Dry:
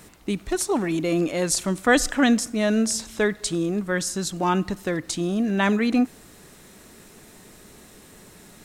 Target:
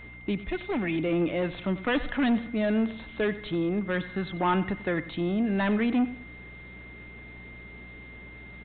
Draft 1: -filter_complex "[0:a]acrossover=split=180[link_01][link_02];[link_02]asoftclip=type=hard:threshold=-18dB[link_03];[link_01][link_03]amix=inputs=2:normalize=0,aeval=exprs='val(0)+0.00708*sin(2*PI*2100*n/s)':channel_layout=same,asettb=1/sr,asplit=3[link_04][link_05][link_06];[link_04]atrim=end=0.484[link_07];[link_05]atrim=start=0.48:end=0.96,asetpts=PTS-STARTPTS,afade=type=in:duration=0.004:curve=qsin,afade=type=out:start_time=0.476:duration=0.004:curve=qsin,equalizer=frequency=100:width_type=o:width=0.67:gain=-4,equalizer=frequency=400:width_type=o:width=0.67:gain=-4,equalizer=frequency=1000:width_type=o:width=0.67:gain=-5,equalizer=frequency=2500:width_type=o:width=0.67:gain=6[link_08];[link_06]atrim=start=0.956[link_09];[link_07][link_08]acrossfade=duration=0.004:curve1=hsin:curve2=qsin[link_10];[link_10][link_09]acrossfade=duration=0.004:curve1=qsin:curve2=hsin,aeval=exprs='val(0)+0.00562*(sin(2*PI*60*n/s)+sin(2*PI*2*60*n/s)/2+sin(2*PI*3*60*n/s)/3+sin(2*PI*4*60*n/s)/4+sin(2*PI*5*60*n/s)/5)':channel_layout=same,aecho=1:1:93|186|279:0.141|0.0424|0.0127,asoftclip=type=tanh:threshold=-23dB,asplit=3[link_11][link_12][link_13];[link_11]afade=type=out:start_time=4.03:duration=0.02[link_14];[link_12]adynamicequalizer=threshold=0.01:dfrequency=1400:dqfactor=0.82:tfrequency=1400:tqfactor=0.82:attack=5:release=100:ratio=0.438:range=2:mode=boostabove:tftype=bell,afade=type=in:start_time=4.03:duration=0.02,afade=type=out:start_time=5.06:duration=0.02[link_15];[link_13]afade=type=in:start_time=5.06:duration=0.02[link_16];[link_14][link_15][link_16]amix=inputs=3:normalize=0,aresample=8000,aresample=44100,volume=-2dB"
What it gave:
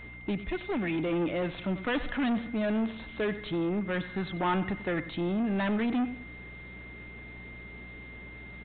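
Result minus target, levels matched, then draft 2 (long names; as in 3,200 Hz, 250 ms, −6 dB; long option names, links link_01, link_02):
soft clipping: distortion +9 dB
-filter_complex "[0:a]acrossover=split=180[link_01][link_02];[link_02]asoftclip=type=hard:threshold=-18dB[link_03];[link_01][link_03]amix=inputs=2:normalize=0,aeval=exprs='val(0)+0.00708*sin(2*PI*2100*n/s)':channel_layout=same,asettb=1/sr,asplit=3[link_04][link_05][link_06];[link_04]atrim=end=0.484[link_07];[link_05]atrim=start=0.48:end=0.96,asetpts=PTS-STARTPTS,afade=type=in:duration=0.004:curve=qsin,afade=type=out:start_time=0.476:duration=0.004:curve=qsin,equalizer=frequency=100:width_type=o:width=0.67:gain=-4,equalizer=frequency=400:width_type=o:width=0.67:gain=-4,equalizer=frequency=1000:width_type=o:width=0.67:gain=-5,equalizer=frequency=2500:width_type=o:width=0.67:gain=6[link_08];[link_06]atrim=start=0.956[link_09];[link_07][link_08]acrossfade=duration=0.004:curve1=hsin:curve2=qsin[link_10];[link_10][link_09]acrossfade=duration=0.004:curve1=qsin:curve2=hsin,aeval=exprs='val(0)+0.00562*(sin(2*PI*60*n/s)+sin(2*PI*2*60*n/s)/2+sin(2*PI*3*60*n/s)/3+sin(2*PI*4*60*n/s)/4+sin(2*PI*5*60*n/s)/5)':channel_layout=same,aecho=1:1:93|186|279:0.141|0.0424|0.0127,asoftclip=type=tanh:threshold=-16dB,asplit=3[link_11][link_12][link_13];[link_11]afade=type=out:start_time=4.03:duration=0.02[link_14];[link_12]adynamicequalizer=threshold=0.01:dfrequency=1400:dqfactor=0.82:tfrequency=1400:tqfactor=0.82:attack=5:release=100:ratio=0.438:range=2:mode=boostabove:tftype=bell,afade=type=in:start_time=4.03:duration=0.02,afade=type=out:start_time=5.06:duration=0.02[link_15];[link_13]afade=type=in:start_time=5.06:duration=0.02[link_16];[link_14][link_15][link_16]amix=inputs=3:normalize=0,aresample=8000,aresample=44100,volume=-2dB"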